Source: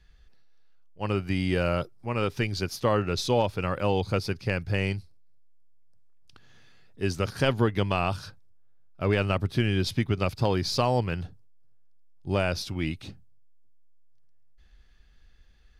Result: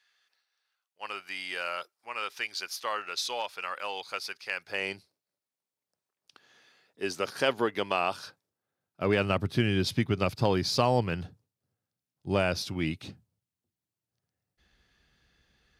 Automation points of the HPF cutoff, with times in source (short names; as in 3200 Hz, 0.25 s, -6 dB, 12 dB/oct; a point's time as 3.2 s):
4.51 s 1100 Hz
4.96 s 370 Hz
8.19 s 370 Hz
9.4 s 110 Hz